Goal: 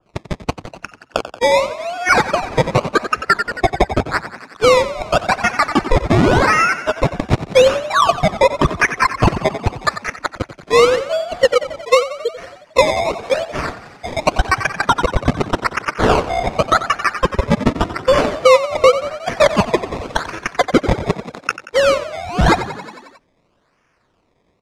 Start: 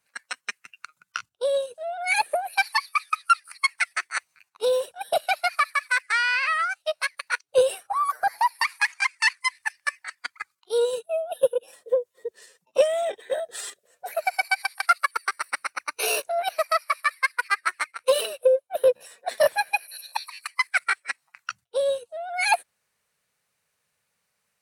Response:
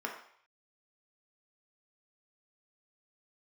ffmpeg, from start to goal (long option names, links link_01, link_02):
-filter_complex "[0:a]equalizer=frequency=690:width=2.4:gain=-7,acrusher=samples=21:mix=1:aa=0.000001:lfo=1:lforange=21:lforate=0.87,lowpass=6000,bandreject=frequency=810:width=12,asplit=8[link_01][link_02][link_03][link_04][link_05][link_06][link_07][link_08];[link_02]adelay=90,afreqshift=32,volume=-14dB[link_09];[link_03]adelay=180,afreqshift=64,volume=-17.9dB[link_10];[link_04]adelay=270,afreqshift=96,volume=-21.8dB[link_11];[link_05]adelay=360,afreqshift=128,volume=-25.6dB[link_12];[link_06]adelay=450,afreqshift=160,volume=-29.5dB[link_13];[link_07]adelay=540,afreqshift=192,volume=-33.4dB[link_14];[link_08]adelay=630,afreqshift=224,volume=-37.3dB[link_15];[link_01][link_09][link_10][link_11][link_12][link_13][link_14][link_15]amix=inputs=8:normalize=0,alimiter=level_in=14.5dB:limit=-1dB:release=50:level=0:latency=1,adynamicequalizer=threshold=0.0316:dfrequency=2200:dqfactor=0.7:tfrequency=2200:tqfactor=0.7:attack=5:release=100:ratio=0.375:range=3.5:mode=cutabove:tftype=highshelf,volume=-1dB"